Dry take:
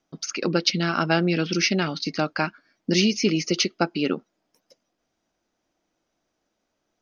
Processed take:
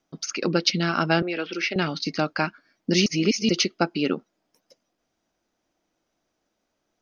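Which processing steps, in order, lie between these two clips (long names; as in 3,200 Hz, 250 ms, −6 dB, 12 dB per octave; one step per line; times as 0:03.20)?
0:01.22–0:01.76: three-way crossover with the lows and the highs turned down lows −24 dB, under 340 Hz, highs −17 dB, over 3,500 Hz
0:03.06–0:03.49: reverse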